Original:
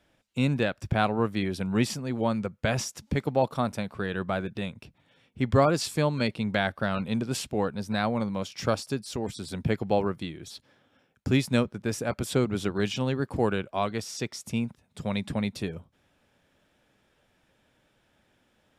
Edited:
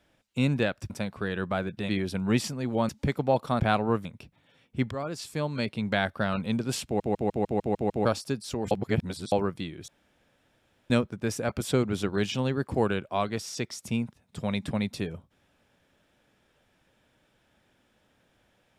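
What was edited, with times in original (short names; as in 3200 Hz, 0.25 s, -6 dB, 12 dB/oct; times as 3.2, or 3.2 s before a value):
0.9–1.35 swap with 3.68–4.67
2.35–2.97 cut
5.53–6.6 fade in, from -16 dB
7.47 stutter in place 0.15 s, 8 plays
9.33–9.94 reverse
10.5–11.52 room tone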